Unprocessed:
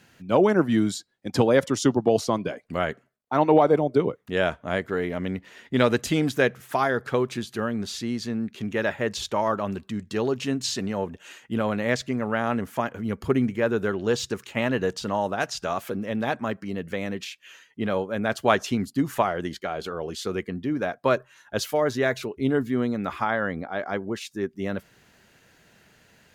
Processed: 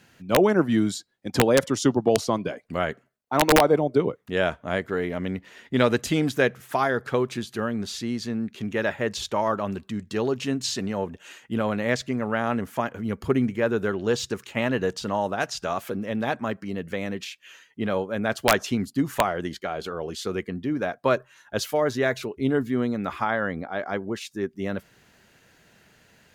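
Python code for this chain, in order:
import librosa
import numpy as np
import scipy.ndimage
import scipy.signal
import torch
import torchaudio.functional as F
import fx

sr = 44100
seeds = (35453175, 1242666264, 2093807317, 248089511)

y = (np.mod(10.0 ** (7.5 / 20.0) * x + 1.0, 2.0) - 1.0) / 10.0 ** (7.5 / 20.0)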